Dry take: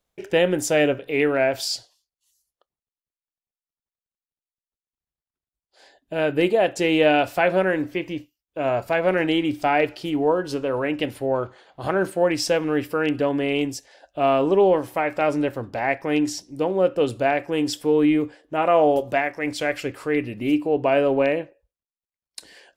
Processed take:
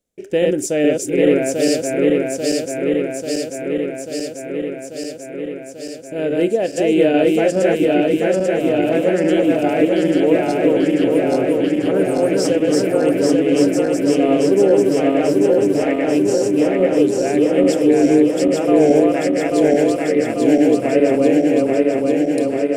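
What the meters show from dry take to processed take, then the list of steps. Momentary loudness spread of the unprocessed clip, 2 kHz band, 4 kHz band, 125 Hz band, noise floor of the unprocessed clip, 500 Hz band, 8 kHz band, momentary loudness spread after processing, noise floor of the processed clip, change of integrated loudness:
9 LU, -0.5 dB, +1.5 dB, +5.5 dB, under -85 dBFS, +7.0 dB, +7.5 dB, 9 LU, -31 dBFS, +6.0 dB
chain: backward echo that repeats 420 ms, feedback 85%, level -1.5 dB; graphic EQ 250/500/1000/4000/8000 Hz +9/+6/-10/-3/+8 dB; trim -3.5 dB

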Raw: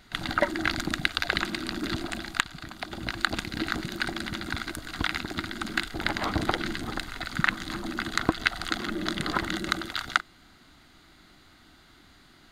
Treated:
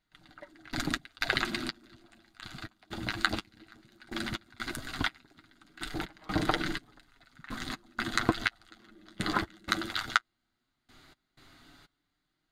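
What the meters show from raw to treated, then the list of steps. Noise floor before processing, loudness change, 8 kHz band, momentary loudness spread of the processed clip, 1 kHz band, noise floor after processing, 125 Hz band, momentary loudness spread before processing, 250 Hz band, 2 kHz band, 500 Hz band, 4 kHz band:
-56 dBFS, -3.5 dB, -4.5 dB, 15 LU, -4.0 dB, -82 dBFS, -4.5 dB, 7 LU, -5.0 dB, -5.5 dB, -6.0 dB, -5.0 dB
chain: trance gate "......xx..xxxx" 124 bpm -24 dB; flange 0.16 Hz, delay 6.3 ms, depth 3.4 ms, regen -24%; trim +2 dB

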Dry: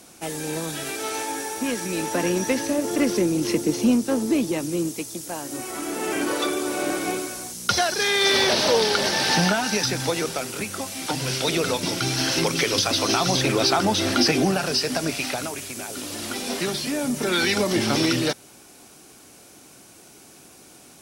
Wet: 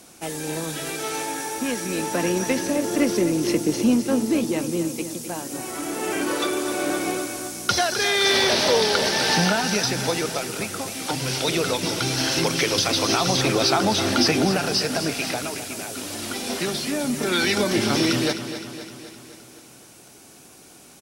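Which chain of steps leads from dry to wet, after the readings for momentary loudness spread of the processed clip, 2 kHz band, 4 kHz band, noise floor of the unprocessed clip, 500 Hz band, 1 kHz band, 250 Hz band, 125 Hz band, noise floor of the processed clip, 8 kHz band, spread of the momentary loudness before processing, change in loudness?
11 LU, +0.5 dB, +0.5 dB, -49 dBFS, +0.5 dB, +0.5 dB, +0.5 dB, +0.5 dB, -48 dBFS, +0.5 dB, 10 LU, +0.5 dB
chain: feedback delay 258 ms, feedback 59%, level -11 dB

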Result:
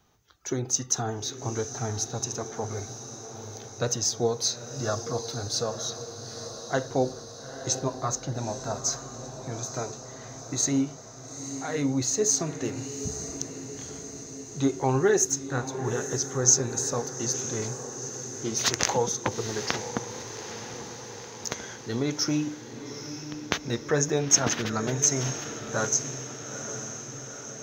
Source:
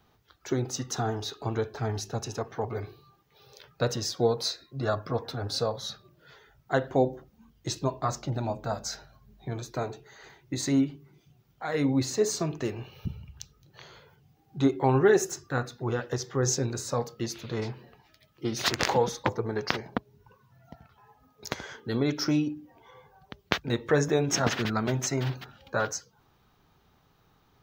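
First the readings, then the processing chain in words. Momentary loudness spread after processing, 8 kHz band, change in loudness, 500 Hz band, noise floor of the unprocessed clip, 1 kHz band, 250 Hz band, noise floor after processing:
15 LU, +11.0 dB, +1.0 dB, -1.0 dB, -66 dBFS, -1.0 dB, -1.0 dB, -43 dBFS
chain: peaking EQ 6.3 kHz +14 dB 0.36 oct; echo that smears into a reverb 885 ms, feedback 64%, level -10 dB; trim -1.5 dB

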